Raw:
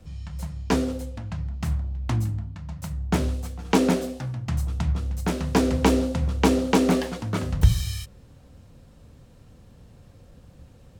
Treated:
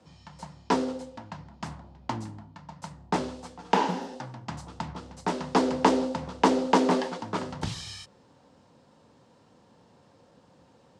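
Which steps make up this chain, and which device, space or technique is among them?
spectral replace 3.77–4.13 s, 230–11000 Hz both; full-range speaker at full volume (loudspeaker Doppler distortion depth 0.74 ms; cabinet simulation 240–8800 Hz, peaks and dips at 920 Hz +9 dB, 2.4 kHz -3 dB, 4.9 kHz +3 dB); treble shelf 5.5 kHz -4.5 dB; trim -1.5 dB

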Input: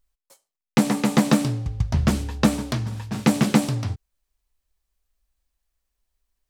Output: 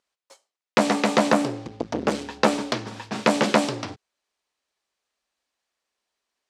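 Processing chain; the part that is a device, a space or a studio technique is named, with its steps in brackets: 1.27–2.12 s: dynamic bell 3.9 kHz, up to -6 dB, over -42 dBFS, Q 0.74; public-address speaker with an overloaded transformer (transformer saturation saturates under 860 Hz; band-pass 330–6000 Hz); trim +6 dB

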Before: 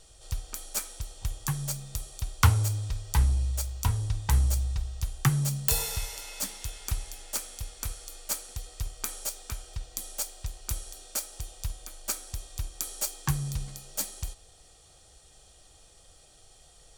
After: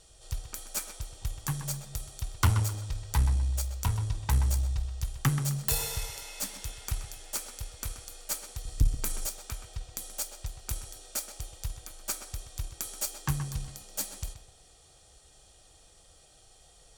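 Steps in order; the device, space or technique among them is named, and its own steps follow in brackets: 8.65–9.26 s: tone controls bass +15 dB, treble +4 dB; rockabilly slapback (valve stage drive 15 dB, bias 0.45; tape echo 127 ms, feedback 34%, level -8 dB, low-pass 3.1 kHz)

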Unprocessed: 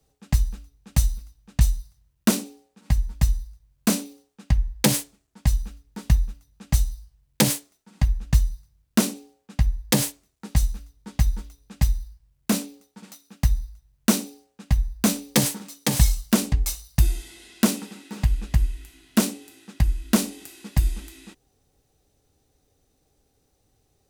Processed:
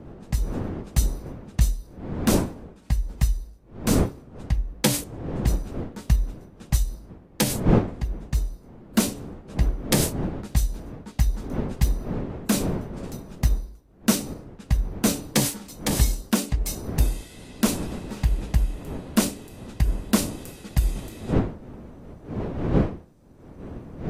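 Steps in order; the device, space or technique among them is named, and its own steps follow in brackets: smartphone video outdoors (wind noise 290 Hz -27 dBFS; level rider gain up to 6 dB; trim -5.5 dB; AAC 48 kbps 32 kHz)

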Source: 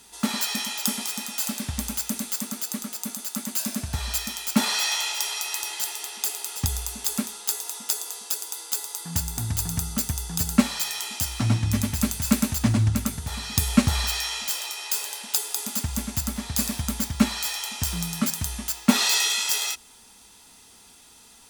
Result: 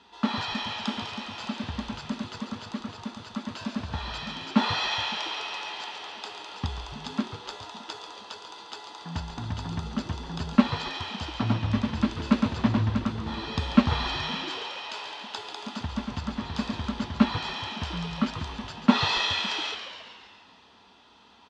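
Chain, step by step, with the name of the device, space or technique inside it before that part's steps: frequency-shifting delay pedal into a guitar cabinet (frequency-shifting echo 139 ms, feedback 61%, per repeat -110 Hz, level -9 dB; cabinet simulation 84–3700 Hz, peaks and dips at 130 Hz -10 dB, 1 kHz +6 dB, 2.2 kHz -6 dB)

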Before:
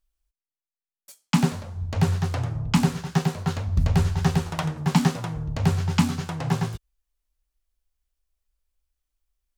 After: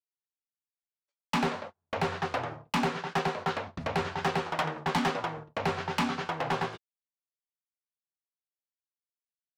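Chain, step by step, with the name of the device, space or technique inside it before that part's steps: walkie-talkie (band-pass 410–2900 Hz; hard clipper -28 dBFS, distortion -9 dB; gate -44 dBFS, range -37 dB); trim +5 dB

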